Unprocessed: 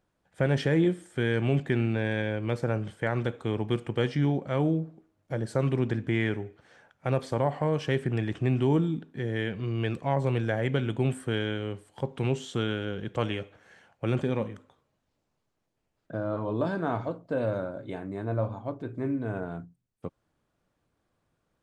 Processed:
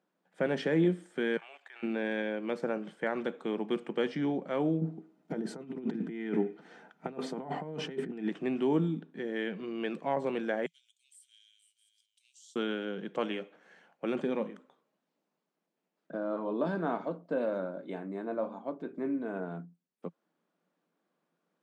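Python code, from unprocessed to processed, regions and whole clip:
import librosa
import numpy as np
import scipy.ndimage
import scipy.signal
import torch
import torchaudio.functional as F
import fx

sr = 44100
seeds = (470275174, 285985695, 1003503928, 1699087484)

y = fx.chain(x, sr, fx.highpass(hz=800.0, slope=24),
    fx.level_steps(step_db=16), at=(1.37, 1.83))
y = fx.chain(y, sr, fx.low_shelf(hz=440.0, db=7.5),
    fx.over_compress(threshold_db=-27.0, ratio=-0.5),
    fx.notch_comb(f0_hz=560.0), at=(4.81, 8.29))
y = fx.chain(y, sr, fx.cheby2_highpass(hz=880.0, order=4, stop_db=80),
    fx.echo_single(ms=475, db=-11.5), at=(10.66, 12.56))
y = scipy.signal.sosfilt(scipy.signal.ellip(4, 1.0, 40, 170.0, 'highpass', fs=sr, output='sos'), y)
y = fx.high_shelf(y, sr, hz=7100.0, db=-10.5)
y = F.gain(torch.from_numpy(y), -2.0).numpy()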